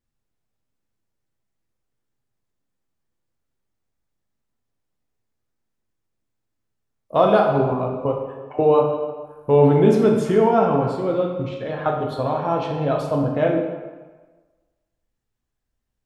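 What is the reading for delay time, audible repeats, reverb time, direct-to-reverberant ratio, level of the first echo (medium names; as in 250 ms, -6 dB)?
no echo, no echo, 1.3 s, 0.0 dB, no echo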